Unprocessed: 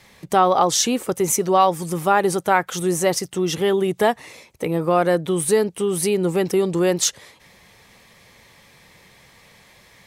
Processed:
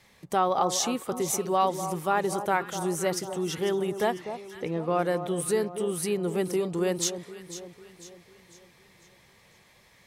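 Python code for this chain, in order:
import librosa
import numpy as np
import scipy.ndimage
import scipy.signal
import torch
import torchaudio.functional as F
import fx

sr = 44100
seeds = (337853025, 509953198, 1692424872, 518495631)

y = fx.lowpass(x, sr, hz=5300.0, slope=24, at=(4.18, 4.99))
y = fx.echo_alternate(y, sr, ms=249, hz=1200.0, feedback_pct=66, wet_db=-9.5)
y = F.gain(torch.from_numpy(y), -8.5).numpy()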